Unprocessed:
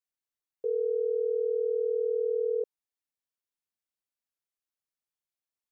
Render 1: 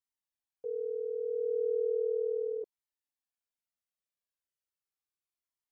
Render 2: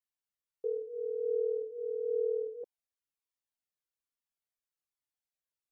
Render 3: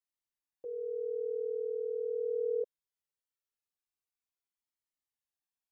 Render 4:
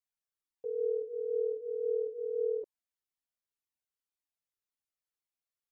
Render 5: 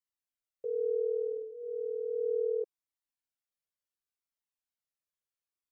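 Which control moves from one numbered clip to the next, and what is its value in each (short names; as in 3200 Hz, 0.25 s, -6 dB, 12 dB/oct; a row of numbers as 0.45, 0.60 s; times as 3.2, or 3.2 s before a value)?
cascading flanger, rate: 0.36, 1.2, 0.21, 1.9, 0.69 Hz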